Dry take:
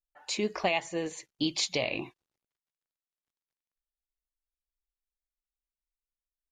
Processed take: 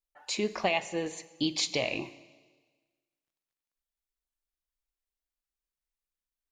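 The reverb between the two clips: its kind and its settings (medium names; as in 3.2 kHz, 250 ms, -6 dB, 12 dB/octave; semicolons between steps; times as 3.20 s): Schroeder reverb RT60 1.4 s, combs from 32 ms, DRR 15.5 dB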